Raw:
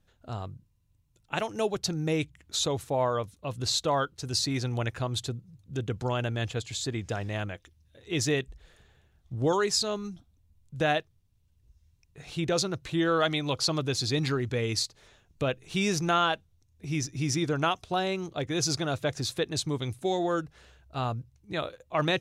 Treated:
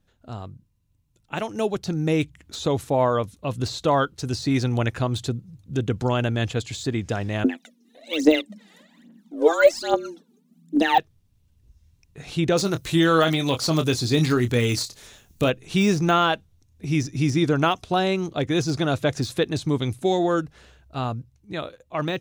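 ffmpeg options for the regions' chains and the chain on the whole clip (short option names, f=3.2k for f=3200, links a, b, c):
-filter_complex "[0:a]asettb=1/sr,asplit=3[a][b][c];[a]atrim=end=7.444[d];[b]atrim=start=7.44:end=10.98,asetpts=PTS-STARTPTS,afade=t=in:d=0.004:c=qsin,afade=t=out:st=3.536:d=0.004:c=qsin,tremolo=f=4.5:d=0.39,afreqshift=160,aphaser=in_gain=1:out_gain=1:delay=2.6:decay=0.79:speed=1.2:type=triangular[e];[c]atrim=start=10.976[f];[d][e]acrossfade=d=0.004:c1=hsin:c2=qsin[g];[g][f]acrossfade=d=0.004:c1=qsin:c2=hsin,asettb=1/sr,asplit=3[h][i][j];[h]atrim=end=12.574[k];[i]atrim=start=12.57:end=15.5,asetpts=PTS-STARTPTS,afade=t=in:d=0.004:c=qsin,afade=t=out:st=2.926:d=0.004:c=qsin,deesser=0.35,aemphasis=mode=production:type=75kf,asplit=2[l][m];[m]adelay=25,volume=-10dB[n];[l][n]amix=inputs=2:normalize=0,atrim=end_sample=129213[o];[j]atrim=start=15.496[p];[k][o]acrossfade=d=0.004:c1=hsin:c2=qsin[q];[q][p]acrossfade=d=0.004:c1=qsin:c2=hsin,deesser=0.85,equalizer=f=240:t=o:w=1:g=4.5,dynaudnorm=f=280:g=13:m=6dB"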